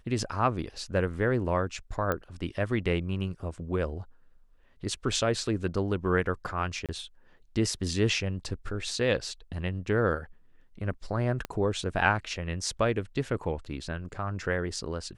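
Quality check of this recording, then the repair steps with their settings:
2.12 pop -15 dBFS
6.86–6.89 gap 27 ms
11.45 pop -18 dBFS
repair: de-click; interpolate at 6.86, 27 ms

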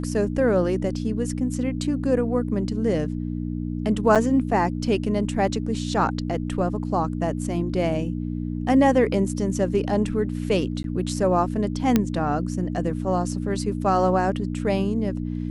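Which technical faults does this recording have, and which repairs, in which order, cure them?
hum 60 Hz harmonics 5 -28 dBFS
4.15–4.16 gap 6.9 ms
10.83–10.84 gap 12 ms
11.96 pop -5 dBFS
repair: de-click; de-hum 60 Hz, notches 5; interpolate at 4.15, 6.9 ms; interpolate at 10.83, 12 ms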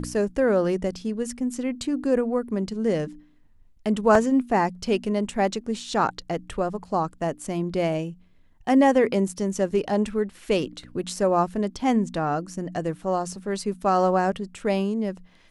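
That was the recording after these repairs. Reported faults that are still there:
none

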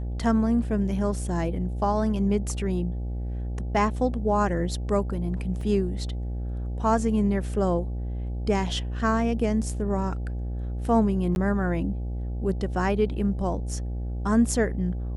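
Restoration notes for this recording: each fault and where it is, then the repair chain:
buzz 60 Hz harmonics 14 -30 dBFS
5.61 gap 2.9 ms
11.35–11.36 gap 11 ms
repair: de-hum 60 Hz, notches 14; interpolate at 5.61, 2.9 ms; interpolate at 11.35, 11 ms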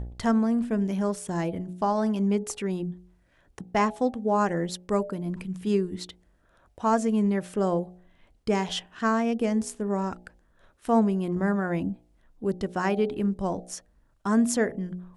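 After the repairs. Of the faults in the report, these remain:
none

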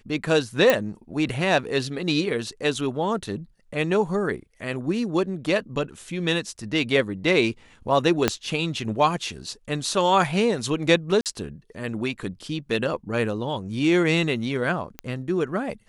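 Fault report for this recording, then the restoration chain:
0.7 pop -5 dBFS
8.28 pop -4 dBFS
11.21–11.26 gap 48 ms
14.99 pop -16 dBFS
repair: de-click; interpolate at 11.21, 48 ms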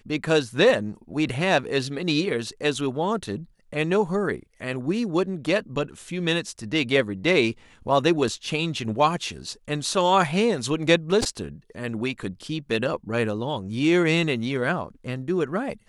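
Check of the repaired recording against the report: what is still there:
8.28 pop

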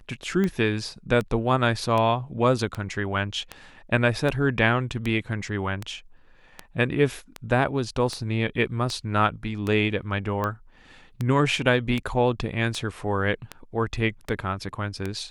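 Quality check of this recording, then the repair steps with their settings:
tick 78 rpm -15 dBFS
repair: de-click

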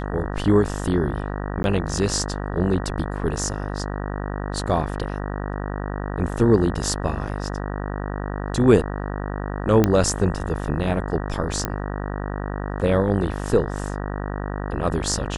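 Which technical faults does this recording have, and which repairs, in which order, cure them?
buzz 50 Hz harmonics 38 -28 dBFS
1.63–1.64 gap 11 ms
9.84 pop -5 dBFS
11.65 pop -8 dBFS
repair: de-click; de-hum 50 Hz, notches 38; interpolate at 1.63, 11 ms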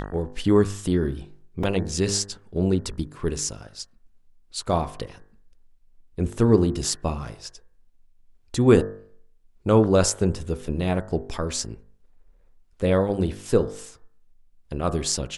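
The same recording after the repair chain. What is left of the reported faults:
none

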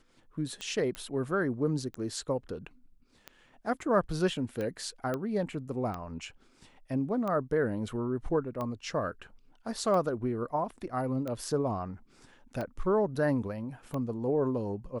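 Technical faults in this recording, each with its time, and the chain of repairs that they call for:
tick 45 rpm -23 dBFS
0.95 pop -22 dBFS
5.14 pop -20 dBFS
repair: de-click

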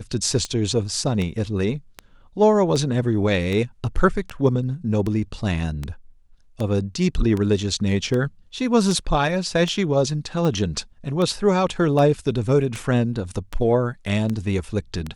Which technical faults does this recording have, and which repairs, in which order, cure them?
tick 78 rpm -14 dBFS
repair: de-click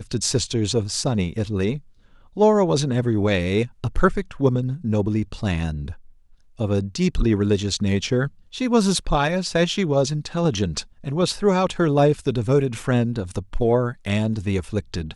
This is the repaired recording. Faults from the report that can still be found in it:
none

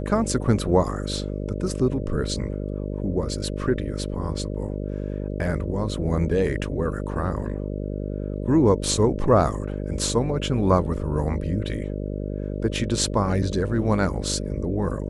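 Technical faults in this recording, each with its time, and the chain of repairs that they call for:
buzz 50 Hz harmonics 12 -29 dBFS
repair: de-hum 50 Hz, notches 12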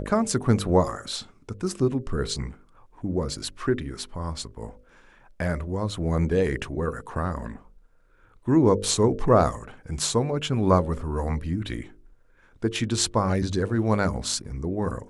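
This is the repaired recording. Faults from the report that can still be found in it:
none

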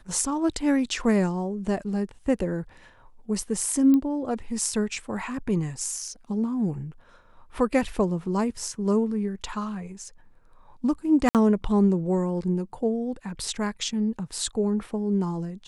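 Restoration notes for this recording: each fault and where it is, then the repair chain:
3.94 pop -14 dBFS
11.29–11.35 gap 58 ms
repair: de-click; interpolate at 11.29, 58 ms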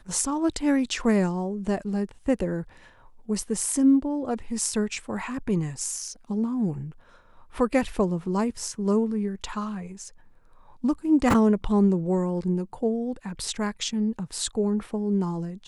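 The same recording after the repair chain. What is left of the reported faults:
none

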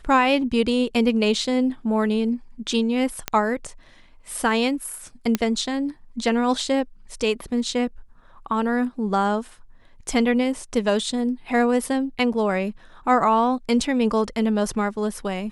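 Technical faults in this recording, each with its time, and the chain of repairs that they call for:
3.28 pop -7 dBFS
5.35 pop -7 dBFS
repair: de-click

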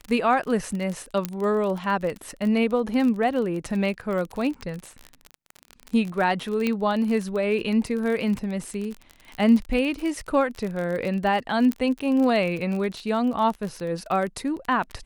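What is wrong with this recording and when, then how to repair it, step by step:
crackle 32/s -28 dBFS
1.25 pop -11 dBFS
6.67 pop -12 dBFS
11.72 pop -13 dBFS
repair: de-click

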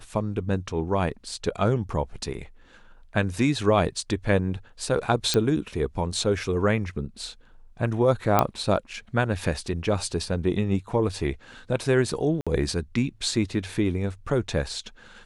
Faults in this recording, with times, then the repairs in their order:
5.34 pop -9 dBFS
8.39 pop -5 dBFS
12.41–12.47 gap 56 ms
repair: de-click; interpolate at 12.41, 56 ms

